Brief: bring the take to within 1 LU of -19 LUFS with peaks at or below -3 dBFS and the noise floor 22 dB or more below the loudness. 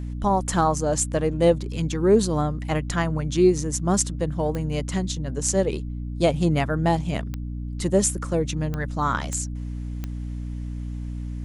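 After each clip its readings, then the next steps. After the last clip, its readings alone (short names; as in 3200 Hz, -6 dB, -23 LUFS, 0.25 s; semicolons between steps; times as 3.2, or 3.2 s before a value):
clicks 5; hum 60 Hz; harmonics up to 300 Hz; hum level -28 dBFS; loudness -24.5 LUFS; peak -4.0 dBFS; loudness target -19.0 LUFS
-> de-click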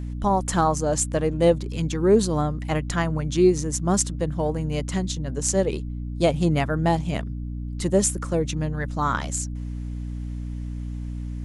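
clicks 0; hum 60 Hz; harmonics up to 300 Hz; hum level -28 dBFS
-> notches 60/120/180/240/300 Hz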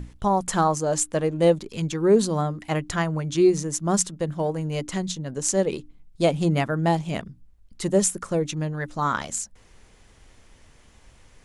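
hum none; loudness -24.0 LUFS; peak -3.5 dBFS; loudness target -19.0 LUFS
-> gain +5 dB; limiter -3 dBFS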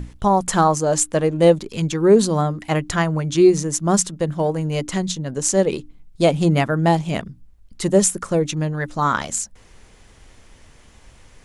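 loudness -19.0 LUFS; peak -3.0 dBFS; noise floor -49 dBFS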